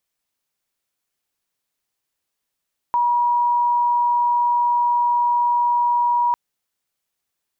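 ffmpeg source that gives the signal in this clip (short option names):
-f lavfi -i "sine=f=961:d=3.4:r=44100,volume=3.06dB"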